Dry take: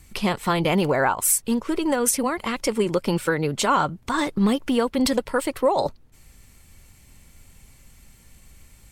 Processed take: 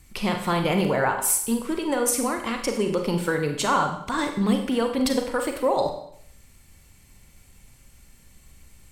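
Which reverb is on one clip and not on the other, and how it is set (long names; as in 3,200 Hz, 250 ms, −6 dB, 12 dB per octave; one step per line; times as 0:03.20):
four-comb reverb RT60 0.65 s, combs from 31 ms, DRR 4.5 dB
level −3 dB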